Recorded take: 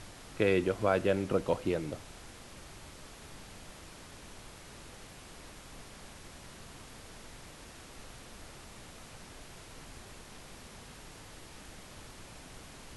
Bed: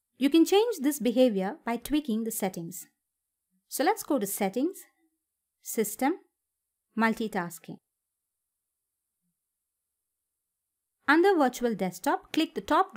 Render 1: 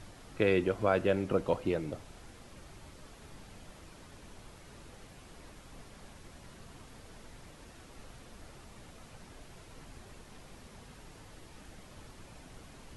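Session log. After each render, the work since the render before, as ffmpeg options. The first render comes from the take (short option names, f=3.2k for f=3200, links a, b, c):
-af "afftdn=nr=6:nf=-51"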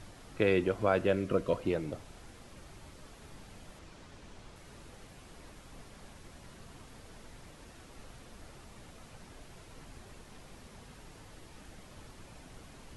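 -filter_complex "[0:a]asettb=1/sr,asplit=3[a][b][c];[a]atrim=end=1.144[d];[b]atrim=start=1.14:end=1.6,asetpts=PTS-STARTPTS,afade=t=in:d=0.004:c=qsin,afade=t=out:st=0.456:d=0.004:c=qsin,asuperstop=centerf=830:order=12:qfactor=3.9[e];[c]atrim=start=1.596[f];[d][e]acrossfade=d=0.004:c1=hsin:c2=qsin[g];[g][f]acrossfade=d=0.004:c1=qsin:c2=hsin,asettb=1/sr,asplit=3[h][i][j];[h]atrim=end=3.794[k];[i]atrim=start=3.79:end=4.56,asetpts=PTS-STARTPTS,afade=t=in:d=0.004:c=qsin,afade=t=out:st=0.766:d=0.004:c=qsin,lowpass=8k[l];[j]atrim=start=4.556[m];[k][l]acrossfade=d=0.004:c1=hsin:c2=qsin[n];[n][m]acrossfade=d=0.004:c1=qsin:c2=hsin"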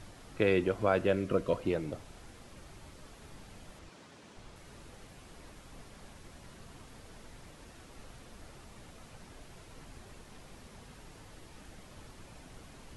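-filter_complex "[0:a]asettb=1/sr,asplit=3[a][b][c];[a]atrim=end=3.894[d];[b]atrim=start=3.89:end=4.37,asetpts=PTS-STARTPTS,afade=t=in:d=0.004:c=qsin,afade=t=out:st=0.476:d=0.004:c=qsin,highpass=150[e];[c]atrim=start=4.366[f];[d][e]acrossfade=d=0.004:c1=hsin:c2=qsin[g];[g][f]acrossfade=d=0.004:c1=qsin:c2=hsin"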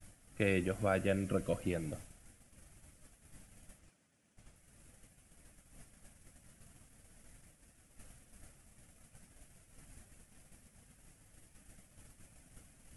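-af "agate=range=-33dB:threshold=-43dB:ratio=3:detection=peak,equalizer=f=400:t=o:w=0.67:g=-9,equalizer=f=1k:t=o:w=0.67:g=-11,equalizer=f=4k:t=o:w=0.67:g=-9,equalizer=f=10k:t=o:w=0.67:g=11"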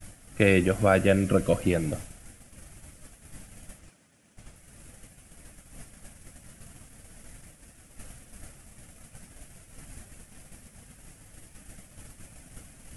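-af "volume=11.5dB"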